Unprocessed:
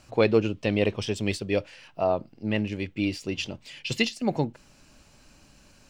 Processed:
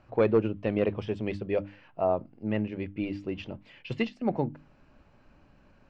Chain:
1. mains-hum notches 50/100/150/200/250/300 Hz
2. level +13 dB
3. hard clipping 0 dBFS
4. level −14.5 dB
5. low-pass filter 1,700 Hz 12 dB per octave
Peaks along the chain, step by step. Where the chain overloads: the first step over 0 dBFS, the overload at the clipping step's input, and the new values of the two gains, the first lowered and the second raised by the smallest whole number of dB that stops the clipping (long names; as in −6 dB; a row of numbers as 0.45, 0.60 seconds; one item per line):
−8.0, +5.0, 0.0, −14.5, −14.0 dBFS
step 2, 5.0 dB
step 2 +8 dB, step 4 −9.5 dB